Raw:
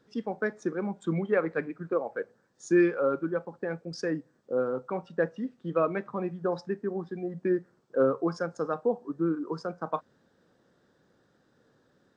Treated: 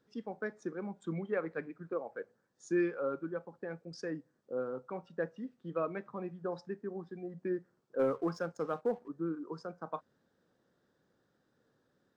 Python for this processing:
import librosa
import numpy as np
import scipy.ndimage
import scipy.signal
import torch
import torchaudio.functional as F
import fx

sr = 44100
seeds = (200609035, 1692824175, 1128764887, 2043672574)

y = fx.leveller(x, sr, passes=1, at=(7.99, 9.08))
y = y * 10.0 ** (-8.5 / 20.0)